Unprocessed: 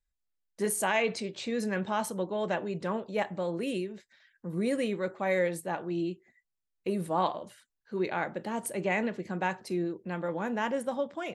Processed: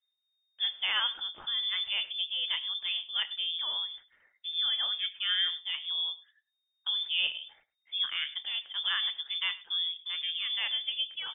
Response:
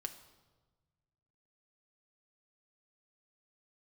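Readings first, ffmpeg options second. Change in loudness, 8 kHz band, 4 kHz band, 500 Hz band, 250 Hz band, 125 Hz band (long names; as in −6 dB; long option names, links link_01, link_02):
+1.5 dB, below −40 dB, +19.0 dB, below −30 dB, below −35 dB, below −30 dB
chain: -filter_complex "[0:a]lowshelf=frequency=220:gain=4,asplit=2[link_01][link_02];[link_02]aecho=0:1:102:0.1[link_03];[link_01][link_03]amix=inputs=2:normalize=0,lowpass=frequency=3100:width_type=q:width=0.5098,lowpass=frequency=3100:width_type=q:width=0.6013,lowpass=frequency=3100:width_type=q:width=0.9,lowpass=frequency=3100:width_type=q:width=2.563,afreqshift=-3700,volume=-2.5dB"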